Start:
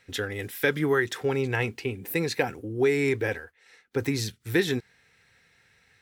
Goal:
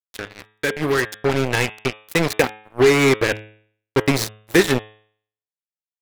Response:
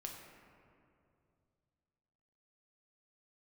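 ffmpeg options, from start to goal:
-af "acrusher=bits=3:mix=0:aa=0.5,dynaudnorm=f=440:g=5:m=11.5dB,bandreject=f=107.1:t=h:w=4,bandreject=f=214.2:t=h:w=4,bandreject=f=321.3:t=h:w=4,bandreject=f=428.4:t=h:w=4,bandreject=f=535.5:t=h:w=4,bandreject=f=642.6:t=h:w=4,bandreject=f=749.7:t=h:w=4,bandreject=f=856.8:t=h:w=4,bandreject=f=963.9:t=h:w=4,bandreject=f=1.071k:t=h:w=4,bandreject=f=1.1781k:t=h:w=4,bandreject=f=1.2852k:t=h:w=4,bandreject=f=1.3923k:t=h:w=4,bandreject=f=1.4994k:t=h:w=4,bandreject=f=1.6065k:t=h:w=4,bandreject=f=1.7136k:t=h:w=4,bandreject=f=1.8207k:t=h:w=4,bandreject=f=1.9278k:t=h:w=4,bandreject=f=2.0349k:t=h:w=4,bandreject=f=2.142k:t=h:w=4,bandreject=f=2.2491k:t=h:w=4,bandreject=f=2.3562k:t=h:w=4,bandreject=f=2.4633k:t=h:w=4,bandreject=f=2.5704k:t=h:w=4,bandreject=f=2.6775k:t=h:w=4,bandreject=f=2.7846k:t=h:w=4,bandreject=f=2.8917k:t=h:w=4,bandreject=f=2.9988k:t=h:w=4,bandreject=f=3.1059k:t=h:w=4,bandreject=f=3.213k:t=h:w=4,bandreject=f=3.3201k:t=h:w=4,bandreject=f=3.4272k:t=h:w=4,bandreject=f=3.5343k:t=h:w=4,bandreject=f=3.6414k:t=h:w=4,bandreject=f=3.7485k:t=h:w=4"

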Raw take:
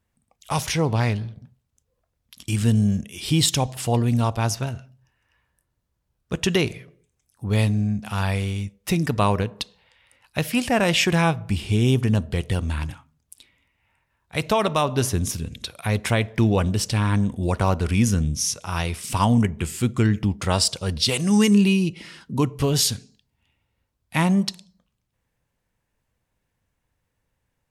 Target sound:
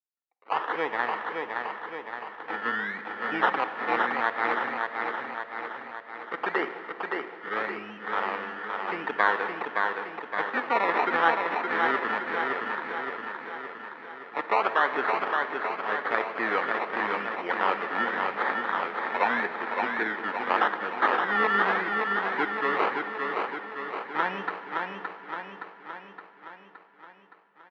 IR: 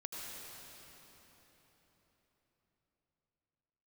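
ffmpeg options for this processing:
-filter_complex "[0:a]agate=range=-33dB:threshold=-52dB:ratio=3:detection=peak,acrusher=samples=22:mix=1:aa=0.000001:lfo=1:lforange=13.2:lforate=0.85,highpass=f=360:w=0.5412,highpass=f=360:w=1.3066,equalizer=f=370:t=q:w=4:g=-4,equalizer=f=610:t=q:w=4:g=-6,equalizer=f=870:t=q:w=4:g=4,equalizer=f=1.3k:t=q:w=4:g=6,equalizer=f=1.8k:t=q:w=4:g=9,equalizer=f=2.7k:t=q:w=4:g=-4,lowpass=f=2.9k:w=0.5412,lowpass=f=2.9k:w=1.3066,aecho=1:1:568|1136|1704|2272|2840|3408|3976|4544:0.631|0.366|0.212|0.123|0.0714|0.0414|0.024|0.0139,asplit=2[a][b];[1:a]atrim=start_sample=2205,asetrate=74970,aresample=44100[c];[b][c]afir=irnorm=-1:irlink=0,volume=-3dB[d];[a][d]amix=inputs=2:normalize=0,volume=-5dB"

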